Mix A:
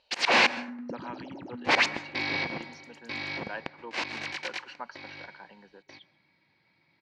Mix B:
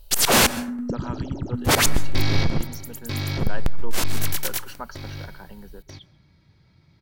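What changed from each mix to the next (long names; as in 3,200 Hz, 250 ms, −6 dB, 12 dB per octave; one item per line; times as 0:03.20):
master: remove loudspeaker in its box 420–4,100 Hz, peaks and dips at 420 Hz −8 dB, 640 Hz −5 dB, 1,300 Hz −8 dB, 2,300 Hz +4 dB, 3,400 Hz −7 dB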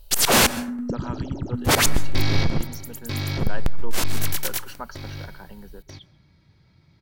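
nothing changed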